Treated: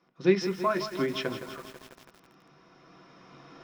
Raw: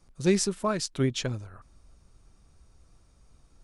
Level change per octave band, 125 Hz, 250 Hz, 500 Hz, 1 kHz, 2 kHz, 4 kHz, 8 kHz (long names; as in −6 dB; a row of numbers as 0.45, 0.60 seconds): −7.0, −1.5, +1.5, +3.5, +3.0, −2.5, −14.5 decibels